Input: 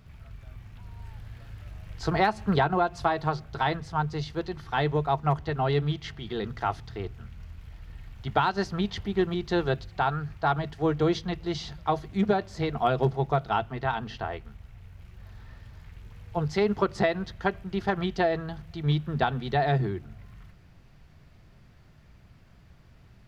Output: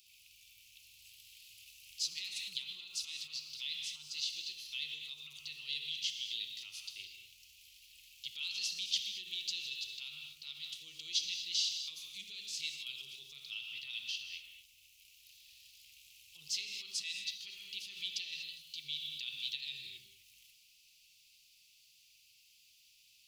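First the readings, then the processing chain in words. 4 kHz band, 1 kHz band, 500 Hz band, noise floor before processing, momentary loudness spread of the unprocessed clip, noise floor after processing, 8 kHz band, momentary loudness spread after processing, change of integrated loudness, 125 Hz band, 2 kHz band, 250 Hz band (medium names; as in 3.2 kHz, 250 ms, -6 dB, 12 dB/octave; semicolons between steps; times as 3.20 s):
+4.0 dB, under -40 dB, under -40 dB, -55 dBFS, 20 LU, -66 dBFS, no reading, 22 LU, -11.0 dB, under -40 dB, -12.0 dB, under -40 dB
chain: gated-style reverb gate 270 ms flat, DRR 5 dB; peak limiter -20.5 dBFS, peak gain reduction 11.5 dB; elliptic high-pass 2.6 kHz, stop band 40 dB; treble shelf 4.2 kHz +11 dB; trim +1 dB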